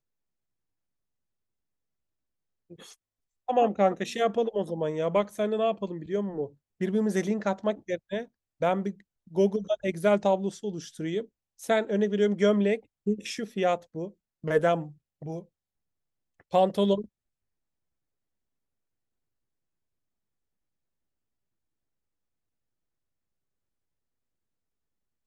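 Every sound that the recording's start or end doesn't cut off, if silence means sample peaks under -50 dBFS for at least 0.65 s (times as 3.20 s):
2.70–15.45 s
16.40–17.06 s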